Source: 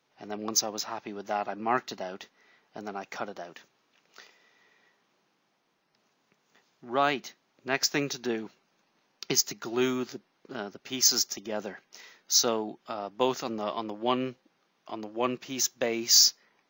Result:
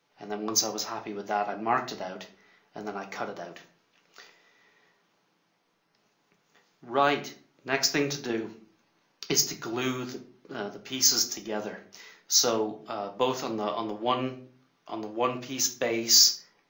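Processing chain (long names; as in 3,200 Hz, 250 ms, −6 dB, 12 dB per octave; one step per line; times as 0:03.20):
rectangular room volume 33 cubic metres, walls mixed, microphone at 0.35 metres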